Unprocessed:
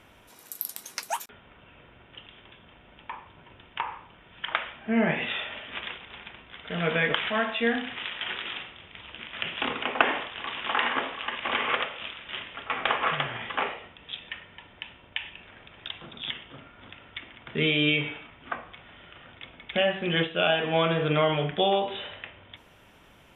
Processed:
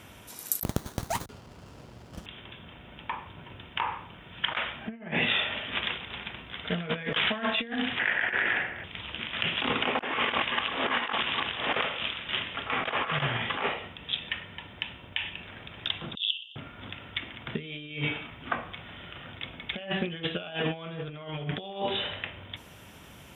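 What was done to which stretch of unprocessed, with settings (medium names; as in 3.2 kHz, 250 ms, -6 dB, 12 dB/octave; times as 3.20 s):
0.63–2.26 s: sliding maximum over 17 samples
7.99–8.84 s: FFT filter 200 Hz 0 dB, 710 Hz +8 dB, 1.2 kHz -2 dB, 1.7 kHz +15 dB, 3 kHz -8 dB, 4.2 kHz -19 dB, 7 kHz -20 dB, 13 kHz +6 dB
10.13–11.74 s: reverse
16.15–16.56 s: brick-wall FIR band-pass 2.6–7.7 kHz
whole clip: high-pass 61 Hz; tone controls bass +6 dB, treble +8 dB; compressor with a negative ratio -29 dBFS, ratio -0.5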